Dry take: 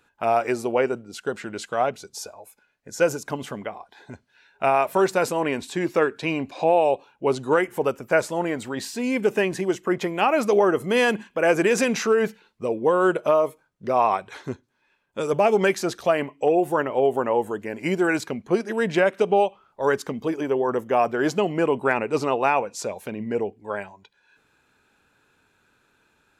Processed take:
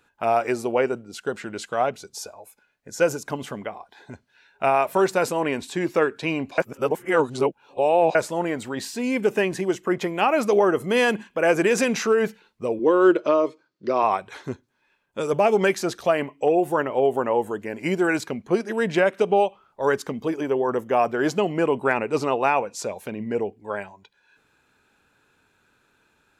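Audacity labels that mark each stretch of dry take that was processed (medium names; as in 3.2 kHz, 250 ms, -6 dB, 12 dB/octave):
6.580000	8.150000	reverse
12.790000	14.030000	cabinet simulation 170–6400 Hz, peaks and dips at 170 Hz -4 dB, 330 Hz +10 dB, 780 Hz -7 dB, 4.5 kHz +10 dB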